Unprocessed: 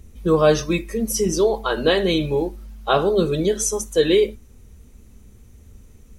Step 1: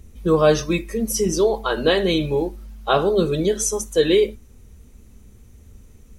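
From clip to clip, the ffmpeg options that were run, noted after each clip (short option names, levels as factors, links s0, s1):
-af anull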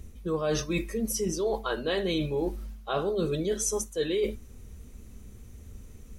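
-af "bandreject=f=870:w=22,areverse,acompressor=threshold=0.0501:ratio=6,areverse"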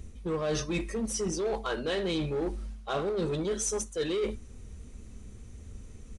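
-filter_complex "[0:a]asplit=2[s0][s1];[s1]aeval=exprs='0.0282*(abs(mod(val(0)/0.0282+3,4)-2)-1)':c=same,volume=0.422[s2];[s0][s2]amix=inputs=2:normalize=0,aresample=22050,aresample=44100,volume=0.75"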